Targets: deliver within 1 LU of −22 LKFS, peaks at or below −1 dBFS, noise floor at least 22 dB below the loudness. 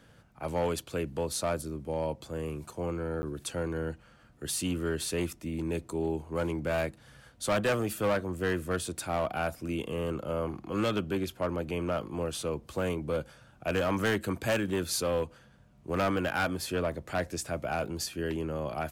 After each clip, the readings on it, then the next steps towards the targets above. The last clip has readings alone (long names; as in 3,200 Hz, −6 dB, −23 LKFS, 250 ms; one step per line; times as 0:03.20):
share of clipped samples 1.6%; peaks flattened at −23.0 dBFS; number of dropouts 1; longest dropout 10 ms; integrated loudness −32.5 LKFS; sample peak −23.0 dBFS; target loudness −22.0 LKFS
→ clipped peaks rebuilt −23 dBFS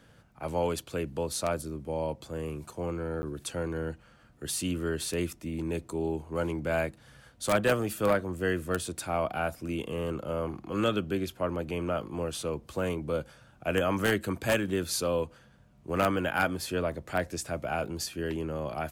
share of clipped samples 0.0%; number of dropouts 1; longest dropout 10 ms
→ repair the gap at 0:03.22, 10 ms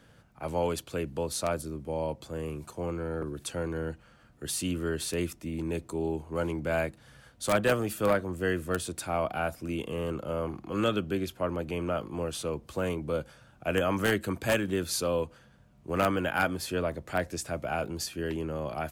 number of dropouts 0; integrated loudness −31.5 LKFS; sample peak −14.0 dBFS; target loudness −22.0 LKFS
→ level +9.5 dB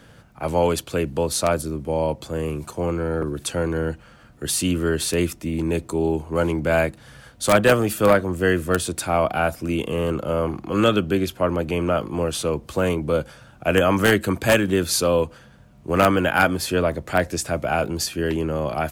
integrated loudness −22.0 LKFS; sample peak −4.5 dBFS; background noise floor −49 dBFS